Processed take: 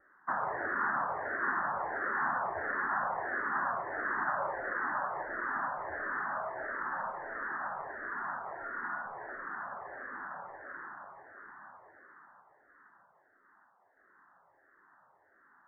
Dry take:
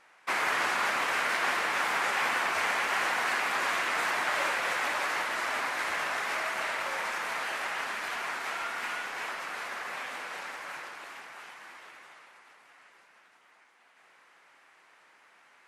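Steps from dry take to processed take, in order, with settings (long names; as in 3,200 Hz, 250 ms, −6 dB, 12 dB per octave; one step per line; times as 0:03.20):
Butterworth low-pass 1,800 Hz 96 dB per octave
low-shelf EQ 150 Hz +7.5 dB
notch filter 480 Hz, Q 12
frequency shifter mixed with the dry sound −1.5 Hz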